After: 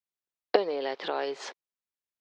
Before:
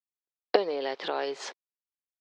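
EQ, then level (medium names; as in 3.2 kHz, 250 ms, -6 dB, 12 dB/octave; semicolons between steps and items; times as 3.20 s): treble shelf 5.6 kHz -5 dB; 0.0 dB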